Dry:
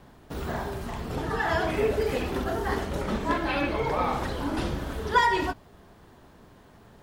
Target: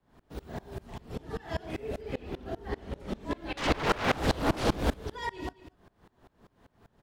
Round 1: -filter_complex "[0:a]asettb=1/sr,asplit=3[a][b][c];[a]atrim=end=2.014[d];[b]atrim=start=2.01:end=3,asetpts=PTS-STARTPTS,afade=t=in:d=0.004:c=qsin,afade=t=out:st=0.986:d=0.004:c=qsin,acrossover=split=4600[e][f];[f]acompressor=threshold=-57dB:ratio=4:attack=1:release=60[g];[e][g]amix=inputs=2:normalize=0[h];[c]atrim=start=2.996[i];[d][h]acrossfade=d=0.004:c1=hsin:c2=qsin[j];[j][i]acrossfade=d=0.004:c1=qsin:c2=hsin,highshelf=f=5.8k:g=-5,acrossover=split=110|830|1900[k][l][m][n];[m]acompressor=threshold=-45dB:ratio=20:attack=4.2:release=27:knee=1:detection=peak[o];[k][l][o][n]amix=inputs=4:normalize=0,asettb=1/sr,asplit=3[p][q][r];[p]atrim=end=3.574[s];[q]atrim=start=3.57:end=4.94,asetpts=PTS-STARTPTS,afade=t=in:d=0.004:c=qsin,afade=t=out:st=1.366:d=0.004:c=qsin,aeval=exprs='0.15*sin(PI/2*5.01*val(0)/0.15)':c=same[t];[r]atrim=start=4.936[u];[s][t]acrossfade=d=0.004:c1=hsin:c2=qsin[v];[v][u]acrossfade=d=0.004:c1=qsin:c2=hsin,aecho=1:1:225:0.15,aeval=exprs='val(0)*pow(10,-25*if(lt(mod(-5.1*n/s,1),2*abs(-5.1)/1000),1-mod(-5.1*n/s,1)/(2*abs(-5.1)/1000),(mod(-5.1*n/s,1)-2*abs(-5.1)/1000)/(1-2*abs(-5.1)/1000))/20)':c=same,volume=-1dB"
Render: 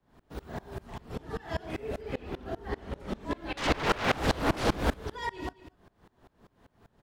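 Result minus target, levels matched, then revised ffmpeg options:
compressor: peak gain reduction -8 dB
-filter_complex "[0:a]asettb=1/sr,asplit=3[a][b][c];[a]atrim=end=2.014[d];[b]atrim=start=2.01:end=3,asetpts=PTS-STARTPTS,afade=t=in:d=0.004:c=qsin,afade=t=out:st=0.986:d=0.004:c=qsin,acrossover=split=4600[e][f];[f]acompressor=threshold=-57dB:ratio=4:attack=1:release=60[g];[e][g]amix=inputs=2:normalize=0[h];[c]atrim=start=2.996[i];[d][h]acrossfade=d=0.004:c1=hsin:c2=qsin[j];[j][i]acrossfade=d=0.004:c1=qsin:c2=hsin,highshelf=f=5.8k:g=-5,acrossover=split=110|830|1900[k][l][m][n];[m]acompressor=threshold=-53.5dB:ratio=20:attack=4.2:release=27:knee=1:detection=peak[o];[k][l][o][n]amix=inputs=4:normalize=0,asettb=1/sr,asplit=3[p][q][r];[p]atrim=end=3.574[s];[q]atrim=start=3.57:end=4.94,asetpts=PTS-STARTPTS,afade=t=in:d=0.004:c=qsin,afade=t=out:st=1.366:d=0.004:c=qsin,aeval=exprs='0.15*sin(PI/2*5.01*val(0)/0.15)':c=same[t];[r]atrim=start=4.936[u];[s][t]acrossfade=d=0.004:c1=hsin:c2=qsin[v];[v][u]acrossfade=d=0.004:c1=qsin:c2=hsin,aecho=1:1:225:0.15,aeval=exprs='val(0)*pow(10,-25*if(lt(mod(-5.1*n/s,1),2*abs(-5.1)/1000),1-mod(-5.1*n/s,1)/(2*abs(-5.1)/1000),(mod(-5.1*n/s,1)-2*abs(-5.1)/1000)/(1-2*abs(-5.1)/1000))/20)':c=same,volume=-1dB"

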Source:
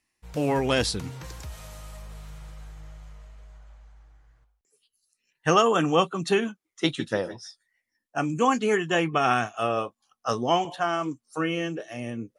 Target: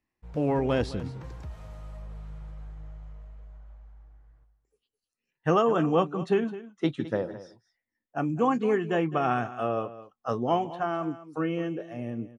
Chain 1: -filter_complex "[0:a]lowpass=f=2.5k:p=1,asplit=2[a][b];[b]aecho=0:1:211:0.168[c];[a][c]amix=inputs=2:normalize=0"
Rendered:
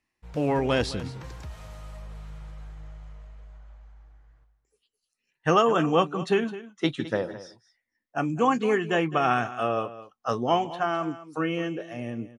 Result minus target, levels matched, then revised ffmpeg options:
2000 Hz band +4.0 dB
-filter_complex "[0:a]lowpass=f=790:p=1,asplit=2[a][b];[b]aecho=0:1:211:0.168[c];[a][c]amix=inputs=2:normalize=0"

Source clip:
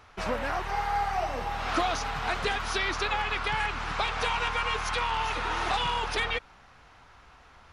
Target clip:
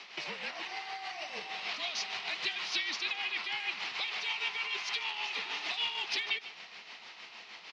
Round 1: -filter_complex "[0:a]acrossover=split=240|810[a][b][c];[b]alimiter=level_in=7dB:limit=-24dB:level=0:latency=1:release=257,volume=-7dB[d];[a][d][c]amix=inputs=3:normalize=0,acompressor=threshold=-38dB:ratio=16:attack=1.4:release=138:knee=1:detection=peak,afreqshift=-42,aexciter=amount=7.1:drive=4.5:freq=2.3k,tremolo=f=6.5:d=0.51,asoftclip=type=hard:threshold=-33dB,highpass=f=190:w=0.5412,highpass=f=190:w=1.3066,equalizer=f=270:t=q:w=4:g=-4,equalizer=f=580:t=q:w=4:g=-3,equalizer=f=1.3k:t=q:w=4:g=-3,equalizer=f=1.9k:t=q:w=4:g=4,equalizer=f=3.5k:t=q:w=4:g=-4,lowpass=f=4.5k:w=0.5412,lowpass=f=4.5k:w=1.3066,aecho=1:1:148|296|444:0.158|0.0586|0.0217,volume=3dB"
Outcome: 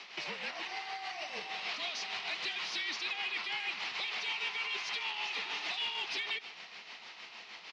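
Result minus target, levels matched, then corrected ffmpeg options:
hard clip: distortion +23 dB
-filter_complex "[0:a]acrossover=split=240|810[a][b][c];[b]alimiter=level_in=7dB:limit=-24dB:level=0:latency=1:release=257,volume=-7dB[d];[a][d][c]amix=inputs=3:normalize=0,acompressor=threshold=-38dB:ratio=16:attack=1.4:release=138:knee=1:detection=peak,afreqshift=-42,aexciter=amount=7.1:drive=4.5:freq=2.3k,tremolo=f=6.5:d=0.51,asoftclip=type=hard:threshold=-21dB,highpass=f=190:w=0.5412,highpass=f=190:w=1.3066,equalizer=f=270:t=q:w=4:g=-4,equalizer=f=580:t=q:w=4:g=-3,equalizer=f=1.3k:t=q:w=4:g=-3,equalizer=f=1.9k:t=q:w=4:g=4,equalizer=f=3.5k:t=q:w=4:g=-4,lowpass=f=4.5k:w=0.5412,lowpass=f=4.5k:w=1.3066,aecho=1:1:148|296|444:0.158|0.0586|0.0217,volume=3dB"

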